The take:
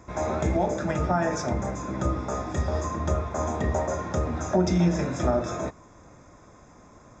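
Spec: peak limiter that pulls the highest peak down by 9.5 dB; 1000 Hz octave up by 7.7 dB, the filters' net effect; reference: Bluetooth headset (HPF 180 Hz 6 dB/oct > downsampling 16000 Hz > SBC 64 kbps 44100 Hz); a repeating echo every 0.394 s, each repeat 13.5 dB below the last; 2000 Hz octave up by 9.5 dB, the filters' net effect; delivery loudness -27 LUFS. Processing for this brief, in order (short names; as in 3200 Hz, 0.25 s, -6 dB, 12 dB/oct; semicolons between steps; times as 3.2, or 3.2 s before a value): bell 1000 Hz +8 dB; bell 2000 Hz +9 dB; limiter -16 dBFS; HPF 180 Hz 6 dB/oct; feedback echo 0.394 s, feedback 21%, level -13.5 dB; downsampling 16000 Hz; gain -0.5 dB; SBC 64 kbps 44100 Hz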